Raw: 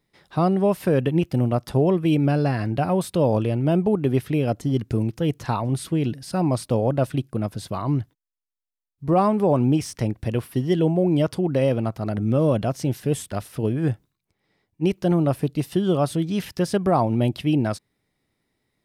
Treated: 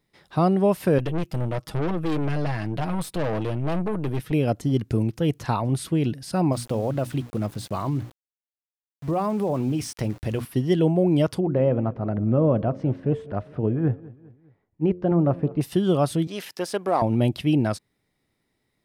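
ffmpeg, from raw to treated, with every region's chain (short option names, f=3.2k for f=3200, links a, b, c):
-filter_complex "[0:a]asettb=1/sr,asplit=3[a][b][c];[a]atrim=end=0.984[d];[b]atrim=start=0.98:end=4.32,asetpts=PTS-STARTPTS,afade=t=in:d=0.004:c=qsin,afade=t=out:st=3.336:d=0.004:c=qsin,aecho=1:1:6.3:0.67,atrim=end_sample=147294,aeval=exprs='(tanh(14.1*val(0)+0.7)-tanh(0.7))/14.1':c=same[e];[c]atrim=start=4.316[f];[d][e]acrossfade=d=0.004:c1=hsin:c2=qsin[g];[g][f]acrossfade=d=0.004:c1=qsin:c2=hsin,asettb=1/sr,asplit=3[h][i][j];[h]atrim=end=6.524[k];[i]atrim=start=6.52:end=10.45,asetpts=PTS-STARTPTS,afade=t=in:d=0.004:c=qsin,afade=t=out:st=3.926:d=0.004:c=qsin,bandreject=f=60:t=h:w=6,bandreject=f=120:t=h:w=6,bandreject=f=180:t=h:w=6,bandreject=f=240:t=h:w=6,bandreject=f=300:t=h:w=6,acompressor=threshold=-20dB:ratio=6:attack=3.2:release=140:knee=1:detection=peak,aeval=exprs='val(0)*gte(abs(val(0)),0.00841)':c=same[l];[j]atrim=start=10.446[m];[k][l]acrossfade=d=0.004:c1=hsin:c2=qsin[n];[n][m]acrossfade=d=0.004:c1=qsin:c2=hsin,asettb=1/sr,asplit=3[o][p][q];[o]atrim=end=11.404[r];[p]atrim=start=11.4:end=15.61,asetpts=PTS-STARTPTS,afade=t=in:d=0.004:c=qsin,afade=t=out:st=4.206:d=0.004:c=qsin,lowpass=1.4k,bandreject=f=89.11:t=h:w=4,bandreject=f=178.22:t=h:w=4,bandreject=f=267.33:t=h:w=4,bandreject=f=356.44:t=h:w=4,bandreject=f=445.55:t=h:w=4,bandreject=f=534.66:t=h:w=4,bandreject=f=623.77:t=h:w=4,aecho=1:1:203|406|609:0.0891|0.0428|0.0205,atrim=end_sample=185661[s];[q]atrim=start=15.606[t];[r][s]acrossfade=d=0.004:c1=hsin:c2=qsin[u];[u][t]acrossfade=d=0.004:c1=qsin:c2=hsin,asettb=1/sr,asplit=3[v][w][x];[v]atrim=end=16.274[y];[w]atrim=start=16.27:end=17.02,asetpts=PTS-STARTPTS,afade=t=in:d=0.004:c=qsin,afade=t=out:st=0.746:d=0.004:c=qsin,aeval=exprs='if(lt(val(0),0),0.708*val(0),val(0))':c=same,highpass=380[z];[x]atrim=start=17.016[aa];[y][z]acrossfade=d=0.004:c1=hsin:c2=qsin[ab];[ab][aa]acrossfade=d=0.004:c1=qsin:c2=hsin"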